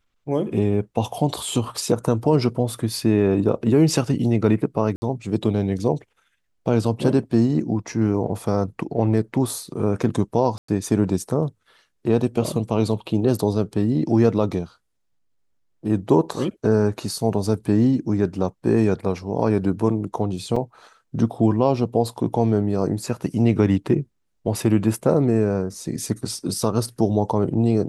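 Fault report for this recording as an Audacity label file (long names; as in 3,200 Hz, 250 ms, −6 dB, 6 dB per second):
4.960000	5.020000	drop-out 60 ms
10.580000	10.680000	drop-out 104 ms
20.560000	20.560000	drop-out 4.1 ms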